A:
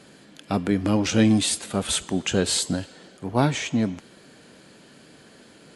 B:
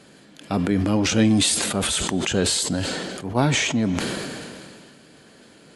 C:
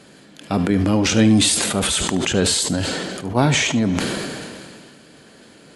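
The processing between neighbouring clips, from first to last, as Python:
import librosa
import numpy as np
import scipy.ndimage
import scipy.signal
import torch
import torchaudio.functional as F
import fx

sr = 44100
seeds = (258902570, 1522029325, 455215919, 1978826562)

y1 = fx.sustainer(x, sr, db_per_s=26.0)
y2 = y1 + 10.0 ** (-14.5 / 20.0) * np.pad(y1, (int(74 * sr / 1000.0), 0))[:len(y1)]
y2 = F.gain(torch.from_numpy(y2), 3.0).numpy()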